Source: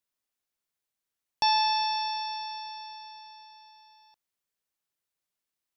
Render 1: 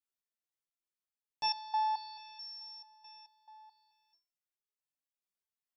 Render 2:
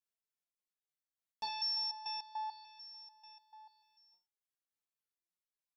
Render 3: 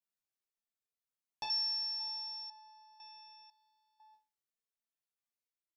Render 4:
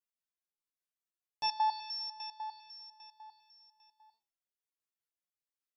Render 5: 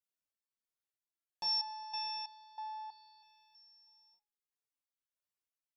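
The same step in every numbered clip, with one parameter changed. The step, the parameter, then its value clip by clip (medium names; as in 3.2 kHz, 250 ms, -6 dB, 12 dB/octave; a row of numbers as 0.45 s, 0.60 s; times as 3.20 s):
resonator arpeggio, rate: 4.6 Hz, 6.8 Hz, 2 Hz, 10 Hz, 3.1 Hz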